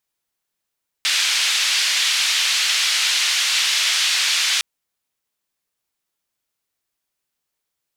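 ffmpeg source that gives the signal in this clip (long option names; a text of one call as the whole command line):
ffmpeg -f lavfi -i "anoisesrc=color=white:duration=3.56:sample_rate=44100:seed=1,highpass=frequency=2500,lowpass=frequency=4100,volume=-3.6dB" out.wav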